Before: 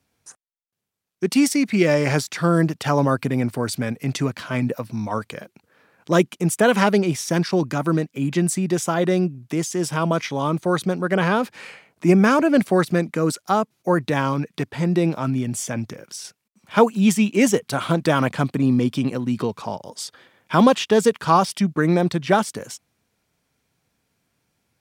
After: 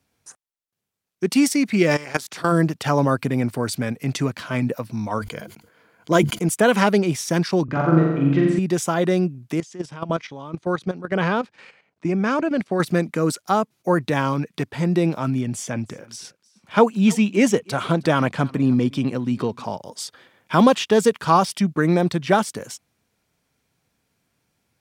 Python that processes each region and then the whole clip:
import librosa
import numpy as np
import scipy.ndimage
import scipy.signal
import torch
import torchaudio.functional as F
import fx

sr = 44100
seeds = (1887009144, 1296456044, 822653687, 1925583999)

y = fx.spec_clip(x, sr, under_db=14, at=(1.9, 2.51), fade=0.02)
y = fx.level_steps(y, sr, step_db=18, at=(1.9, 2.51), fade=0.02)
y = fx.chain(y, sr, fx.ripple_eq(per_octave=1.8, db=7),
    fx.sustainer(db_per_s=90.0), at=(5.19, 6.49))
y = fx.chain(y, sr, fx.lowpass(hz=2200.0, slope=12),
    fx.room_flutter(wall_m=7.4, rt60_s=1.1), at=(7.64, 8.59))
y = fx.chain(y, sr, fx.lowpass(hz=5700.0, slope=12),
    fx.level_steps(step_db=10),
    fx.upward_expand(threshold_db=-31.0, expansion=1.5), at=(9.6, 12.8))
y = fx.chain(y, sr, fx.high_shelf(hz=9800.0, db=-10.5),
    fx.echo_single(ms=313, db=-23.0), at=(15.41, 19.64))